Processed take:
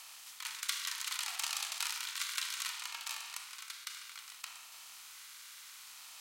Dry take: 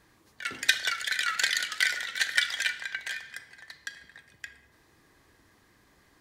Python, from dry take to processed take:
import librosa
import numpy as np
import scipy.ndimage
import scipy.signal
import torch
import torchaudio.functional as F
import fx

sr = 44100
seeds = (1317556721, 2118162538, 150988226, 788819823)

y = fx.bin_compress(x, sr, power=0.4)
y = np.diff(y, prepend=0.0)
y = fx.ring_lfo(y, sr, carrier_hz=520.0, swing_pct=25, hz=0.64)
y = y * 10.0 ** (-6.5 / 20.0)